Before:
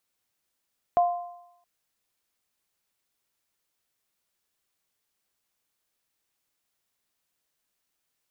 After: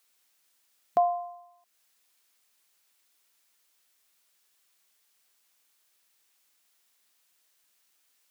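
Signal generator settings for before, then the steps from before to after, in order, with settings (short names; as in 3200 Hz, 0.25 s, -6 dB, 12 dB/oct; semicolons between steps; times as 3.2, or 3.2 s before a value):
sine partials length 0.67 s, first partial 702 Hz, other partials 1040 Hz, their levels -13.5 dB, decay 0.79 s, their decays 0.94 s, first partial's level -15.5 dB
brick-wall FIR high-pass 170 Hz; mismatched tape noise reduction encoder only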